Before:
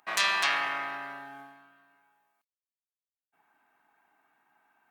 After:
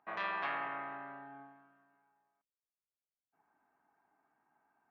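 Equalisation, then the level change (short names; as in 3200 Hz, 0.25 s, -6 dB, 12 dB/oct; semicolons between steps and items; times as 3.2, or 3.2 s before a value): air absorption 220 m; tape spacing loss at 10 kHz 28 dB; high shelf 2500 Hz -8.5 dB; -1.5 dB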